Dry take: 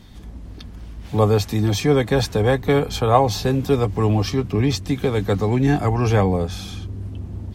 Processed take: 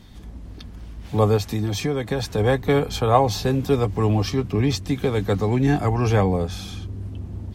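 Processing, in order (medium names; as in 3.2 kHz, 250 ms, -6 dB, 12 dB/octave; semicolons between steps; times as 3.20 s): 1.36–2.38 s: compression 10:1, threshold -18 dBFS, peak gain reduction 7.5 dB; trim -1.5 dB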